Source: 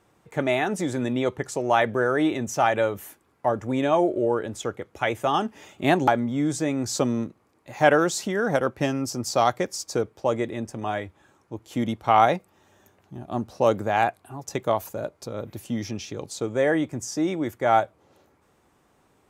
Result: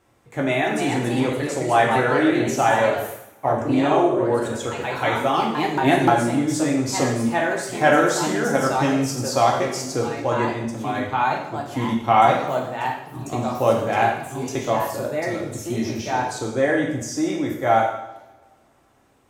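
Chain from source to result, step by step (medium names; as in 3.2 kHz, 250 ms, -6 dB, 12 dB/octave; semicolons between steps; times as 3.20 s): two-slope reverb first 0.81 s, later 2.4 s, from -25 dB, DRR -2 dB; ever faster or slower copies 363 ms, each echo +2 st, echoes 2, each echo -6 dB; trim -1 dB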